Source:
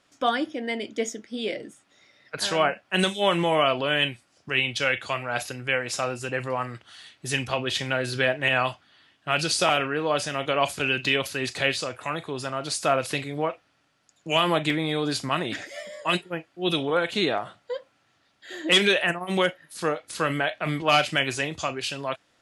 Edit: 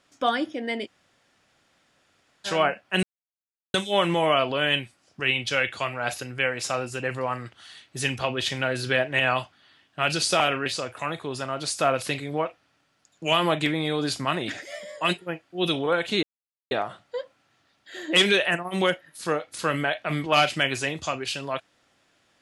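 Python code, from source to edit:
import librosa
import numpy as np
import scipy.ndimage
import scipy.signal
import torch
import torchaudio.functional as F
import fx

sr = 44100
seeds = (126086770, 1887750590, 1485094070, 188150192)

y = fx.edit(x, sr, fx.room_tone_fill(start_s=0.86, length_s=1.6, crossfade_s=0.04),
    fx.insert_silence(at_s=3.03, length_s=0.71),
    fx.cut(start_s=9.95, length_s=1.75),
    fx.insert_silence(at_s=17.27, length_s=0.48), tone=tone)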